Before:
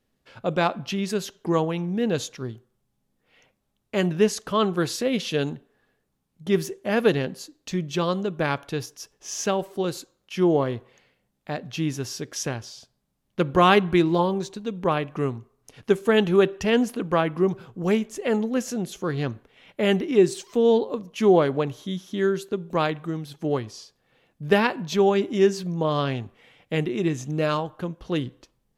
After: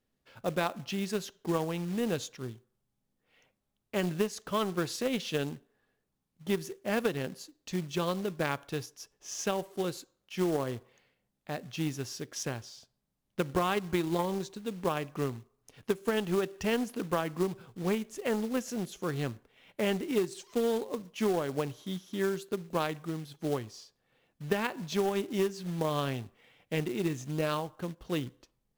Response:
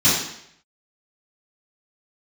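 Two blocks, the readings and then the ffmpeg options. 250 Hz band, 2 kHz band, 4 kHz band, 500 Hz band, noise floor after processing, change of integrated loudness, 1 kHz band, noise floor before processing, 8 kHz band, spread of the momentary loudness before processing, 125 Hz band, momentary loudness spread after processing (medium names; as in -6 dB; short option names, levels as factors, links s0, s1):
-8.5 dB, -8.5 dB, -7.5 dB, -9.5 dB, -81 dBFS, -9.0 dB, -9.5 dB, -74 dBFS, -6.0 dB, 13 LU, -8.0 dB, 10 LU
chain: -af "aeval=exprs='0.562*(cos(1*acos(clip(val(0)/0.562,-1,1)))-cos(1*PI/2))+0.0282*(cos(7*acos(clip(val(0)/0.562,-1,1)))-cos(7*PI/2))':c=same,acompressor=threshold=0.0891:ratio=16,acrusher=bits=4:mode=log:mix=0:aa=0.000001,volume=0.668"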